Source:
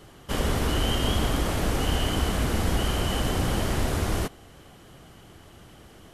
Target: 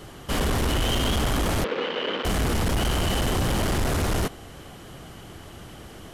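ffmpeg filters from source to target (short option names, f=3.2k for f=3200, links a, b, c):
-filter_complex "[0:a]asoftclip=type=tanh:threshold=-27dB,asettb=1/sr,asplit=3[a][b][c];[a]atrim=end=1.644[d];[b]atrim=start=1.64:end=2.25,asetpts=PTS-STARTPTS,afade=t=in:d=0.004:c=qsin,afade=t=out:st=0.606:d=0.004:c=qsin,highpass=f=250:w=0.5412,highpass=f=250:w=1.3066,equalizer=f=290:t=q:w=4:g=-7,equalizer=f=500:t=q:w=4:g=9,equalizer=f=720:t=q:w=4:g=-10,lowpass=f=3.6k:w=0.5412,lowpass=f=3.6k:w=1.3066[e];[c]atrim=start=2.246[f];[d][e]acrossfade=d=0.004:c1=hsin:c2=qsin[g];[g][f]acrossfade=d=0.004:c1=qsin:c2=hsin,volume=7dB"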